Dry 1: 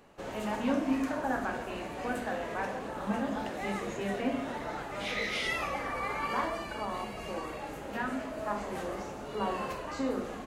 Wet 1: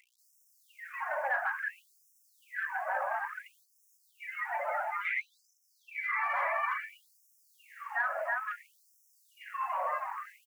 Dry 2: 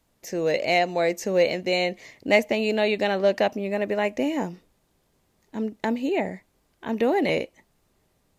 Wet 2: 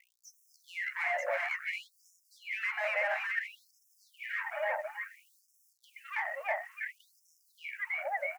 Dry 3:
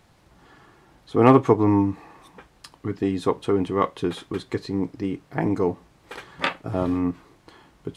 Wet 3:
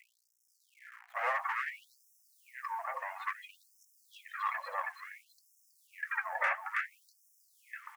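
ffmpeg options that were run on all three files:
-filter_complex "[0:a]aecho=1:1:323|646|969|1292|1615|1938|2261:0.631|0.347|0.191|0.105|0.0577|0.0318|0.0175,afftdn=nr=20:nf=-33,aeval=exprs='val(0)+0.00501*(sin(2*PI*60*n/s)+sin(2*PI*2*60*n/s)/2+sin(2*PI*3*60*n/s)/3+sin(2*PI*4*60*n/s)/4+sin(2*PI*5*60*n/s)/5)':c=same,adynamicequalizer=threshold=0.00112:dfrequency=5800:dqfactor=5.3:tfrequency=5800:tqfactor=5.3:attack=5:release=100:ratio=0.375:range=2.5:mode=cutabove:tftype=bell,asplit=2[a][b];[b]highpass=f=720:p=1,volume=29dB,asoftclip=type=tanh:threshold=-1.5dB[c];[a][c]amix=inputs=2:normalize=0,lowpass=f=4k:p=1,volume=-6dB,areverse,acompressor=threshold=-20dB:ratio=5,areverse,acrusher=bits=8:dc=4:mix=0:aa=0.000001,highshelf=f=2.7k:t=q:w=3:g=-11.5,acrossover=split=98|390|2600[d][e][f][g];[d]acompressor=threshold=-54dB:ratio=4[h];[e]acompressor=threshold=-34dB:ratio=4[i];[f]acompressor=threshold=-27dB:ratio=4[j];[g]acompressor=threshold=-36dB:ratio=4[k];[h][i][j][k]amix=inputs=4:normalize=0,highpass=42,flanger=delay=1.7:depth=4.1:regen=86:speed=1.5:shape=sinusoidal,afftfilt=real='re*gte(b*sr/1024,510*pow(5300/510,0.5+0.5*sin(2*PI*0.58*pts/sr)))':imag='im*gte(b*sr/1024,510*pow(5300/510,0.5+0.5*sin(2*PI*0.58*pts/sr)))':win_size=1024:overlap=0.75"

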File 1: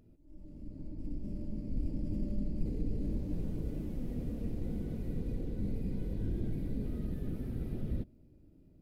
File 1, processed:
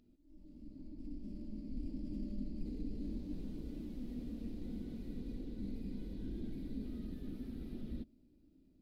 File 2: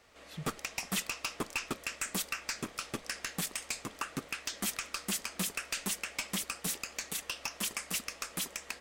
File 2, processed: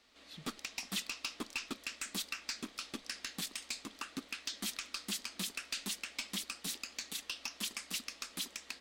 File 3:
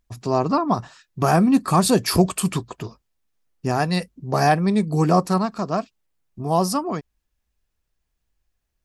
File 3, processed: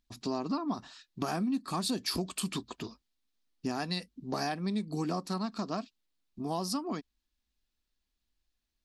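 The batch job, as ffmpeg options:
-af "equalizer=f=125:t=o:w=1:g=-10,equalizer=f=250:t=o:w=1:g=9,equalizer=f=500:t=o:w=1:g=-4,equalizer=f=4k:t=o:w=1:g=10,acompressor=threshold=-22dB:ratio=5,volume=-8dB"

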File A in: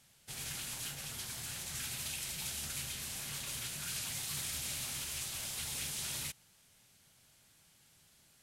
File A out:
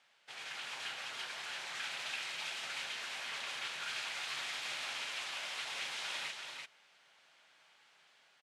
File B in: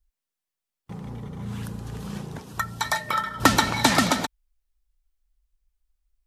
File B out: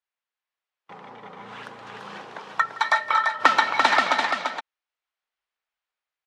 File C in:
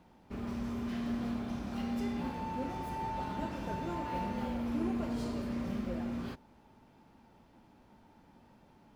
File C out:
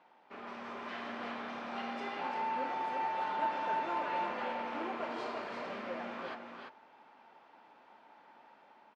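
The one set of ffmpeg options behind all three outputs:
-af "dynaudnorm=f=240:g=5:m=3dB,highpass=700,lowpass=2.8k,aecho=1:1:166|341:0.112|0.562,volume=4dB"

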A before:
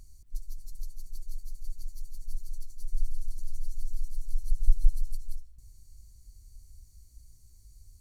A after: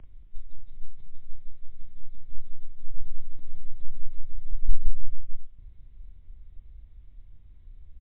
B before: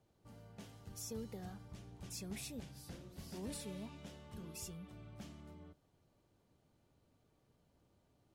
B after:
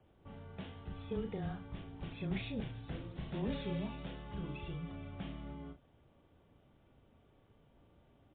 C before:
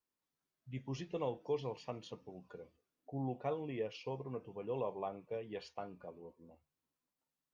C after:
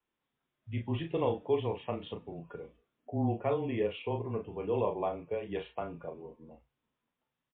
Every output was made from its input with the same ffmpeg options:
-filter_complex "[0:a]afreqshift=-18,asplit=2[a][b];[b]adelay=36,volume=-6.5dB[c];[a][c]amix=inputs=2:normalize=0,volume=7.5dB" -ar 8000 -c:a libmp3lame -b:a 40k

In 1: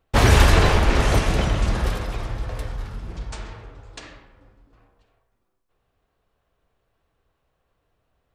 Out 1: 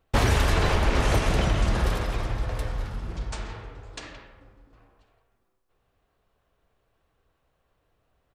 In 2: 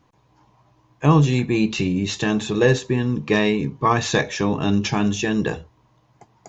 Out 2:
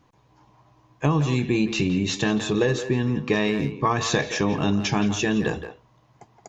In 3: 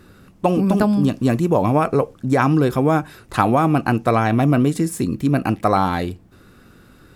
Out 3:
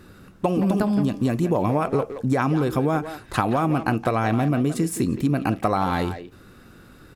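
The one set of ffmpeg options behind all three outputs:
-filter_complex "[0:a]acompressor=threshold=-17dB:ratio=12,asplit=2[a][b];[b]adelay=170,highpass=300,lowpass=3.4k,asoftclip=type=hard:threshold=-18dB,volume=-9dB[c];[a][c]amix=inputs=2:normalize=0"

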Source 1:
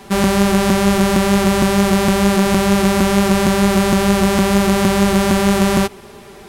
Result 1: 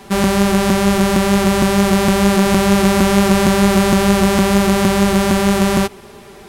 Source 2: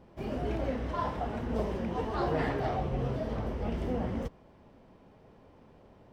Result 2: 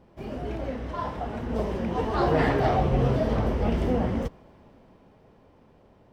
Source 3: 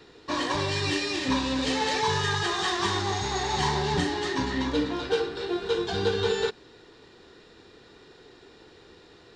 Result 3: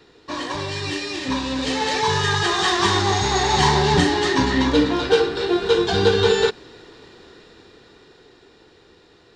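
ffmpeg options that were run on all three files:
-af "dynaudnorm=f=140:g=31:m=10.5dB"

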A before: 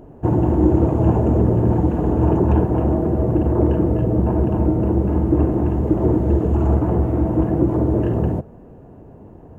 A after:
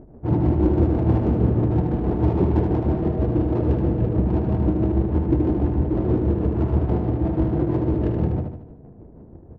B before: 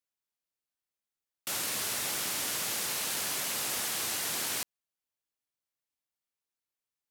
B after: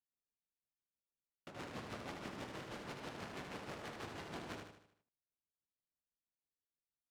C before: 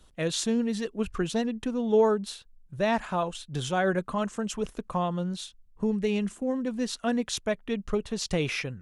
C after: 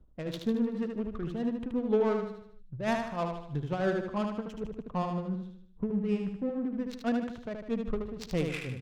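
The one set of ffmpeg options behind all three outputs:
-filter_complex "[0:a]equalizer=f=970:w=0.32:g=-4.5,tremolo=f=6.2:d=0.66,asplit=2[a][b];[b]asoftclip=type=tanh:threshold=-23dB,volume=-7dB[c];[a][c]amix=inputs=2:normalize=0,adynamicsmooth=sensitivity=3.5:basefreq=690,aecho=1:1:76|152|228|304|380|456:0.562|0.264|0.124|0.0584|0.0274|0.0129,volume=-1.5dB"

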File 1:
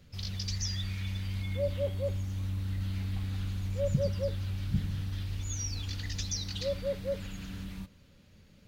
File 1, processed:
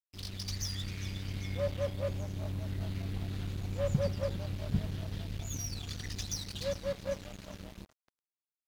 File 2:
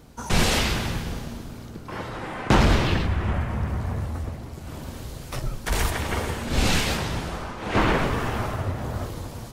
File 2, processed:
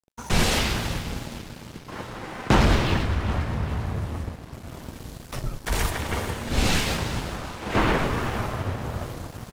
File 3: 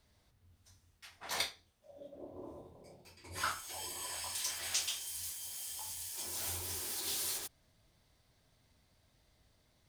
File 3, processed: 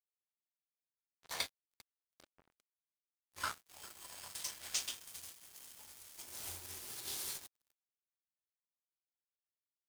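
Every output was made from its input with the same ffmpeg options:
-filter_complex "[0:a]asplit=7[a][b][c][d][e][f][g];[b]adelay=398,afreqshift=36,volume=-14dB[h];[c]adelay=796,afreqshift=72,volume=-18.7dB[i];[d]adelay=1194,afreqshift=108,volume=-23.5dB[j];[e]adelay=1592,afreqshift=144,volume=-28.2dB[k];[f]adelay=1990,afreqshift=180,volume=-32.9dB[l];[g]adelay=2388,afreqshift=216,volume=-37.7dB[m];[a][h][i][j][k][l][m]amix=inputs=7:normalize=0,aeval=exprs='sgn(val(0))*max(abs(val(0))-0.00944,0)':c=same"

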